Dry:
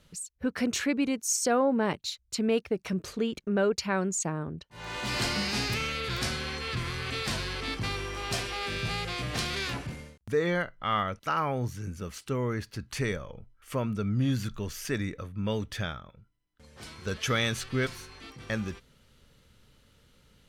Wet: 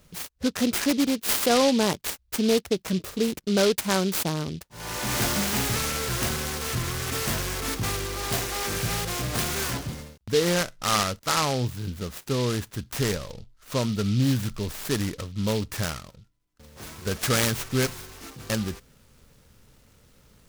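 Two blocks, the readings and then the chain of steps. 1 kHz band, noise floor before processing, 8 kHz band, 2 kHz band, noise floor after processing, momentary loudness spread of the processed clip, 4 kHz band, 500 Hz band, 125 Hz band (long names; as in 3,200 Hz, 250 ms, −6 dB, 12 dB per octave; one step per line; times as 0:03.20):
+3.0 dB, −65 dBFS, +6.5 dB, +2.0 dB, −61 dBFS, 11 LU, +5.0 dB, +4.0 dB, +4.5 dB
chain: short delay modulated by noise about 3,700 Hz, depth 0.1 ms
level +4.5 dB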